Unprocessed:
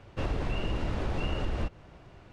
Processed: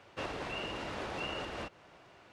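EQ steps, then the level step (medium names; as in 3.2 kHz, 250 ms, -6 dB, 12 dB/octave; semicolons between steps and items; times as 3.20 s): high-pass 680 Hz 6 dB/octave; +1.0 dB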